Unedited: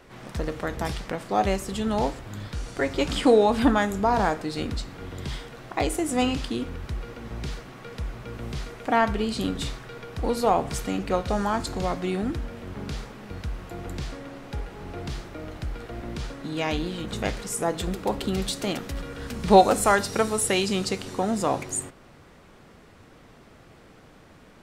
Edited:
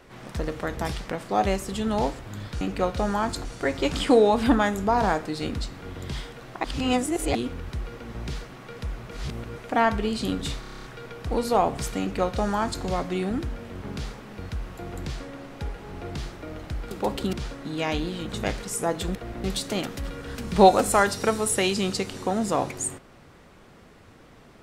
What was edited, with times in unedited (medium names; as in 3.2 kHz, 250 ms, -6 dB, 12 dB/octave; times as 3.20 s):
5.80–6.51 s: reverse
8.27–8.72 s: reverse
9.76 s: stutter 0.03 s, 9 plays
10.92–11.76 s: copy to 2.61 s
15.83–16.12 s: swap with 17.94–18.36 s